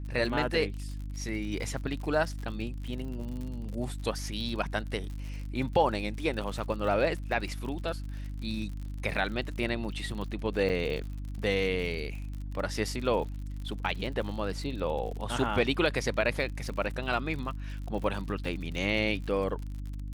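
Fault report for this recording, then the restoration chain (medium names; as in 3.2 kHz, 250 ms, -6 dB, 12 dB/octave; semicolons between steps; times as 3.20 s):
crackle 57 per s -37 dBFS
hum 50 Hz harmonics 6 -37 dBFS
10.69–10.70 s: dropout 7.1 ms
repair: de-click; de-hum 50 Hz, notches 6; interpolate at 10.69 s, 7.1 ms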